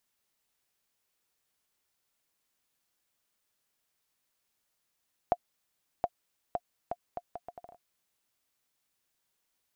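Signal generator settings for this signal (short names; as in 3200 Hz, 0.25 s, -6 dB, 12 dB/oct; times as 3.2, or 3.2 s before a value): bouncing ball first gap 0.72 s, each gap 0.71, 704 Hz, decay 49 ms -13.5 dBFS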